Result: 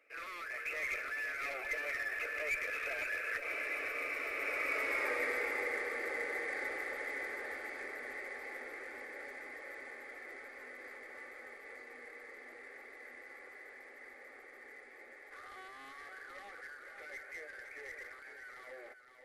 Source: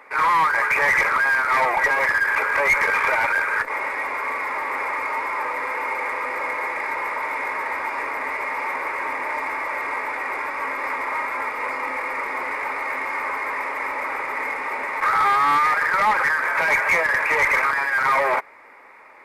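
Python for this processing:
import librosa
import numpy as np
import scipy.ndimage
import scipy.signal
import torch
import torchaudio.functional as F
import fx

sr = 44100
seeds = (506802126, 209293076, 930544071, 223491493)

y = fx.doppler_pass(x, sr, speed_mps=24, closest_m=11.0, pass_at_s=5.03)
y = fx.rider(y, sr, range_db=3, speed_s=0.5)
y = fx.fixed_phaser(y, sr, hz=400.0, stages=4)
y = y + 10.0 ** (-8.5 / 20.0) * np.pad(y, (int(514 * sr / 1000.0), 0))[:len(y)]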